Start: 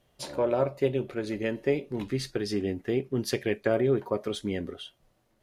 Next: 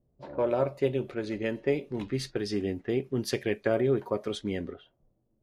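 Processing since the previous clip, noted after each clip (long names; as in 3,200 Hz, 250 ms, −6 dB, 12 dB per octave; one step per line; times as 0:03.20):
low-pass that shuts in the quiet parts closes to 350 Hz, open at −26 dBFS
level −1 dB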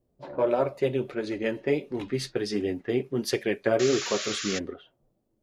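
low-shelf EQ 130 Hz −8.5 dB
sound drawn into the spectrogram noise, 0:03.79–0:04.59, 1,100–7,300 Hz −37 dBFS
flanger 1.5 Hz, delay 2.1 ms, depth 6.7 ms, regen −37%
level +7 dB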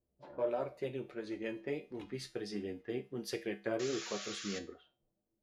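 tuned comb filter 67 Hz, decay 0.32 s, harmonics odd, mix 70%
level −4.5 dB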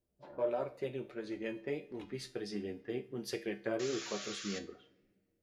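convolution reverb RT60 1.7 s, pre-delay 5 ms, DRR 17.5 dB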